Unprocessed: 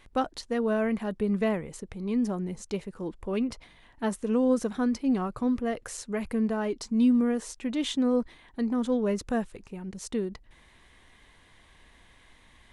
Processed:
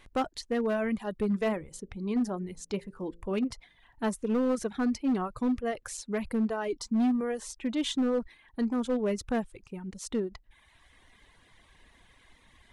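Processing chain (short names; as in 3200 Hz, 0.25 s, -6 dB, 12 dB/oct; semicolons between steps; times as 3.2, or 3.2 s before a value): 1.28–3.45 de-hum 56.67 Hz, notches 10; reverb removal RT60 0.96 s; hard clip -22.5 dBFS, distortion -16 dB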